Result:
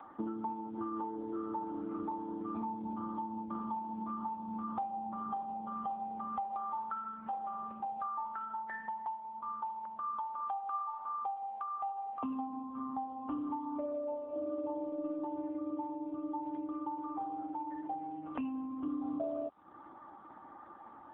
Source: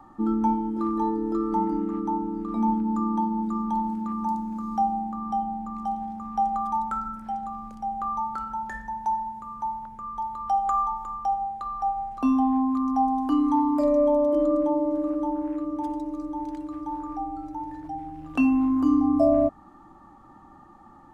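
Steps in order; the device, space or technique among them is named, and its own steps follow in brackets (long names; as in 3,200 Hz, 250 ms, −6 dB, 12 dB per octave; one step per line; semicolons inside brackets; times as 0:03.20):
voicemail (band-pass filter 300–2,700 Hz; downward compressor 6 to 1, threshold −36 dBFS, peak gain reduction 17.5 dB; level +1 dB; AMR narrowband 6.7 kbit/s 8,000 Hz)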